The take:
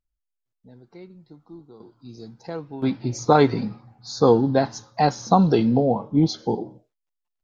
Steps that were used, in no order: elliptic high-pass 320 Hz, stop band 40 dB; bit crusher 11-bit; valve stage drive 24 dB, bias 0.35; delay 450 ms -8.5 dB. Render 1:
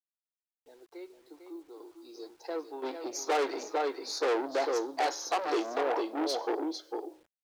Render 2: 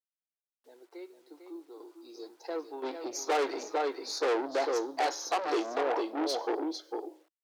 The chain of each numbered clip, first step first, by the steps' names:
delay > valve stage > elliptic high-pass > bit crusher; delay > bit crusher > valve stage > elliptic high-pass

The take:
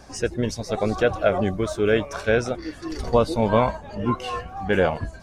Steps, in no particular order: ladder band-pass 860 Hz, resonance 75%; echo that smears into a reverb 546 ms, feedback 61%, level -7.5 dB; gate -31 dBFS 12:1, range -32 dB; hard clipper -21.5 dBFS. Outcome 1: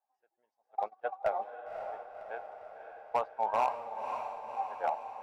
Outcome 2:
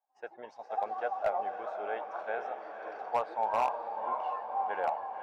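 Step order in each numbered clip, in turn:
ladder band-pass > gate > hard clipper > echo that smears into a reverb; echo that smears into a reverb > gate > ladder band-pass > hard clipper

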